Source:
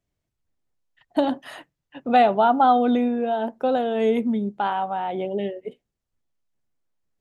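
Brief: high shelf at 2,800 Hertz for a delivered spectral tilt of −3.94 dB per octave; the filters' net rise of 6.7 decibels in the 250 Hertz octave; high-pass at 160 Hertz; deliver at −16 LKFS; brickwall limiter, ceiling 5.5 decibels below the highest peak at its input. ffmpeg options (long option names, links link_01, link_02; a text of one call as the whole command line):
ffmpeg -i in.wav -af "highpass=160,equalizer=frequency=250:width_type=o:gain=8,highshelf=frequency=2800:gain=-5,volume=4.5dB,alimiter=limit=-6dB:level=0:latency=1" out.wav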